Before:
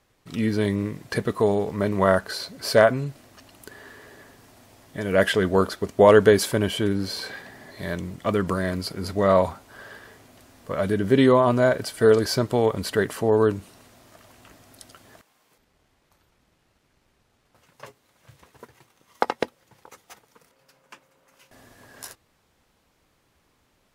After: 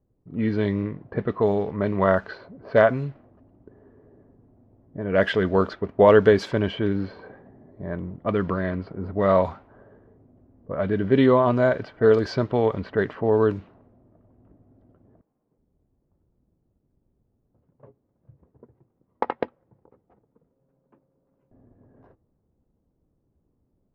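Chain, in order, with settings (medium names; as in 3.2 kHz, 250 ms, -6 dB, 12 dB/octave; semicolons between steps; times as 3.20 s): level-controlled noise filter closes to 350 Hz, open at -16 dBFS; distance through air 200 m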